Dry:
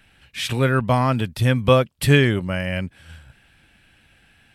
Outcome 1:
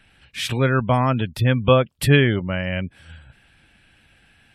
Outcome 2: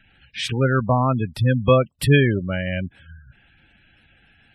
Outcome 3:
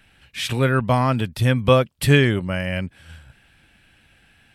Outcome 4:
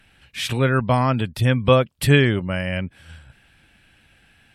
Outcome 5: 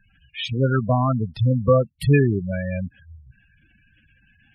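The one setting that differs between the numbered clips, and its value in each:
spectral gate, under each frame's peak: -35 dB, -20 dB, -60 dB, -45 dB, -10 dB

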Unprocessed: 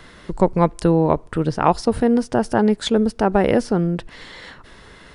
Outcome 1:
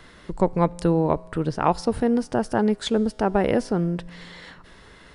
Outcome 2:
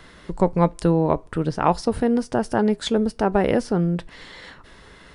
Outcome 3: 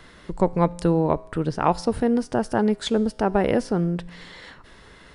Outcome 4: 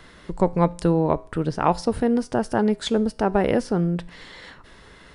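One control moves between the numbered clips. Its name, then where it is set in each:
feedback comb, decay: 2 s, 0.16 s, 0.96 s, 0.43 s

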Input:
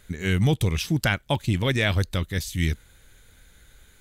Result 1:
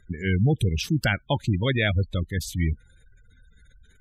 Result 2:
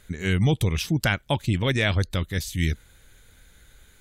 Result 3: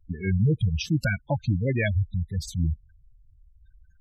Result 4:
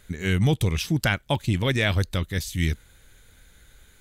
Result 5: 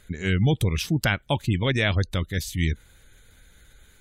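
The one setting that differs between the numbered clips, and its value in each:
spectral gate, under each frame's peak: -20 dB, -45 dB, -10 dB, -60 dB, -35 dB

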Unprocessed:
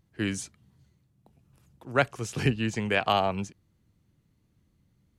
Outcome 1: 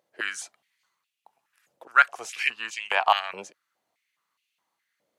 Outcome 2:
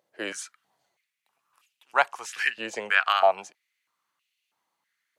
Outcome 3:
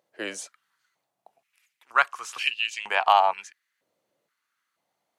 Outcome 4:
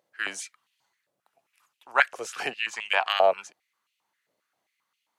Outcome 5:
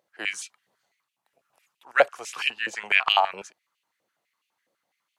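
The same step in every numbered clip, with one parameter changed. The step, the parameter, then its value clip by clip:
step-sequenced high-pass, rate: 4.8 Hz, 3.1 Hz, 2.1 Hz, 7.5 Hz, 12 Hz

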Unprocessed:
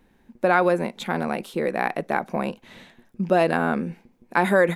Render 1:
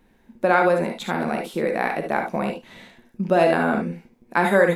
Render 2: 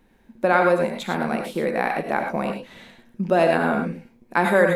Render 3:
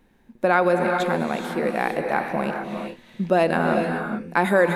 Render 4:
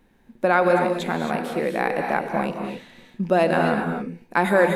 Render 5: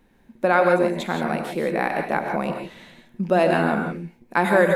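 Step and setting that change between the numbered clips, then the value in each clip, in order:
gated-style reverb, gate: 90 ms, 130 ms, 460 ms, 290 ms, 190 ms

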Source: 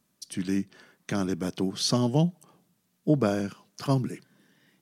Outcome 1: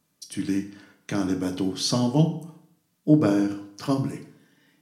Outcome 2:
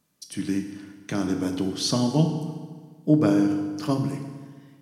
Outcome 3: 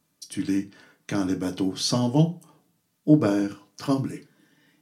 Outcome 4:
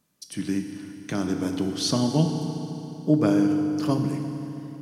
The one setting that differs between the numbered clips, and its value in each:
FDN reverb, RT60: 0.64 s, 1.6 s, 0.3 s, 3.4 s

